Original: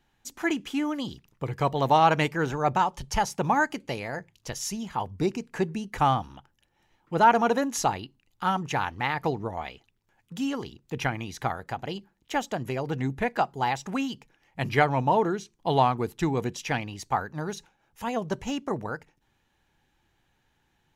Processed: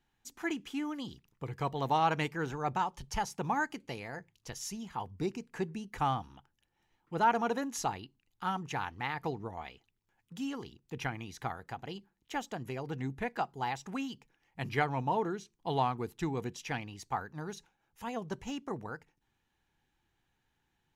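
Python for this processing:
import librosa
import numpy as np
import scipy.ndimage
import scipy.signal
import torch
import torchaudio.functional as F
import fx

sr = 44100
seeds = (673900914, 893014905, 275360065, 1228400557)

y = fx.peak_eq(x, sr, hz=590.0, db=-6.0, octaves=0.23)
y = F.gain(torch.from_numpy(y), -8.0).numpy()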